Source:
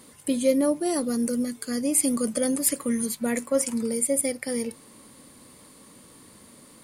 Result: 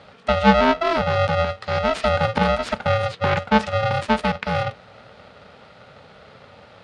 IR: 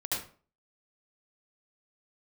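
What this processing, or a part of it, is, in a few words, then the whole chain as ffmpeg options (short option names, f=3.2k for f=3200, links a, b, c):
ring modulator pedal into a guitar cabinet: -af "aeval=exprs='val(0)*sgn(sin(2*PI*330*n/s))':c=same,highpass=87,equalizer=f=190:t=q:w=4:g=3,equalizer=f=440:t=q:w=4:g=4,equalizer=f=1.3k:t=q:w=4:g=4,lowpass=f=4k:w=0.5412,lowpass=f=4k:w=1.3066,volume=6dB"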